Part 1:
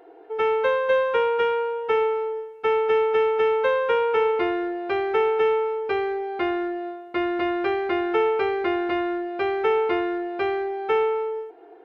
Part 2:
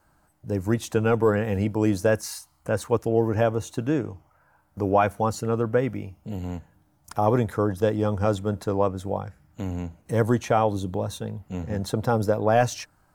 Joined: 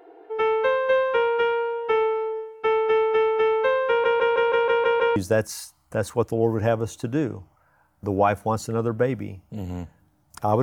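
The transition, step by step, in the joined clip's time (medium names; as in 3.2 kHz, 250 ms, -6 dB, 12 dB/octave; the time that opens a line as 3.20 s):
part 1
3.88 s: stutter in place 0.16 s, 8 plays
5.16 s: go over to part 2 from 1.90 s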